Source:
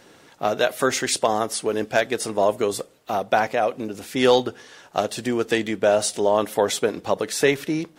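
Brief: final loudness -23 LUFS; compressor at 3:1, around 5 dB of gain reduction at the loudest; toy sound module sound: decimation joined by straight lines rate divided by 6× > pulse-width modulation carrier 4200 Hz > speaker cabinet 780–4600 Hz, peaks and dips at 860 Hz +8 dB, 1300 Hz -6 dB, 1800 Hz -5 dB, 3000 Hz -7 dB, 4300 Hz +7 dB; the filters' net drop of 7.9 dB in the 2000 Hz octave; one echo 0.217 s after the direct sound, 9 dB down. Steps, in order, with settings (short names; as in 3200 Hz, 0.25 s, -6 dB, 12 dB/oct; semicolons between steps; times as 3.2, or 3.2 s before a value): bell 2000 Hz -5 dB; compressor 3:1, threshold -20 dBFS; echo 0.217 s -9 dB; decimation joined by straight lines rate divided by 6×; pulse-width modulation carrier 4200 Hz; speaker cabinet 780–4600 Hz, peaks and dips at 860 Hz +8 dB, 1300 Hz -6 dB, 1800 Hz -5 dB, 3000 Hz -7 dB, 4300 Hz +7 dB; gain +1.5 dB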